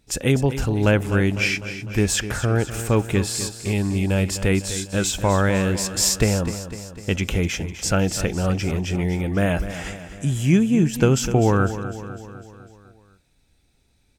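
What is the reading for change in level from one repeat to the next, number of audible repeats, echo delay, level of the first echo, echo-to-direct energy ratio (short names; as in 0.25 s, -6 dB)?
-5.0 dB, 5, 0.251 s, -12.0 dB, -10.5 dB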